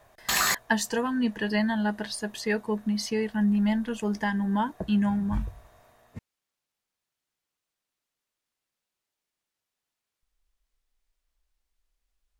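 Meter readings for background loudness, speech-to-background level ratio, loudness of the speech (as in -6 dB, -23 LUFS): -25.5 LUFS, -2.0 dB, -27.5 LUFS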